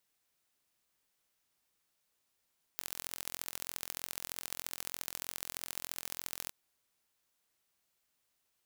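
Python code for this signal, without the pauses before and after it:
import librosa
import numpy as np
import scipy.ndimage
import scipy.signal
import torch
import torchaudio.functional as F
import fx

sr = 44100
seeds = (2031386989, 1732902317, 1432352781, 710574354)

y = fx.impulse_train(sr, length_s=3.72, per_s=43.2, accent_every=3, level_db=-10.0)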